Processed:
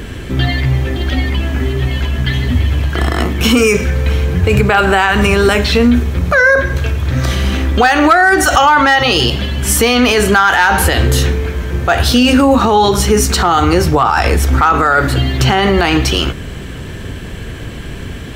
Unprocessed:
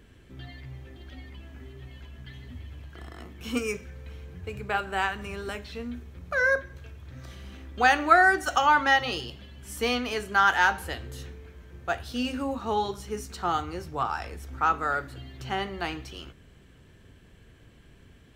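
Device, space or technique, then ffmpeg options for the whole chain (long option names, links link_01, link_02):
loud club master: -af "acompressor=threshold=-25dB:ratio=3,asoftclip=type=hard:threshold=-19dB,alimiter=level_in=29.5dB:limit=-1dB:release=50:level=0:latency=1,volume=-1dB"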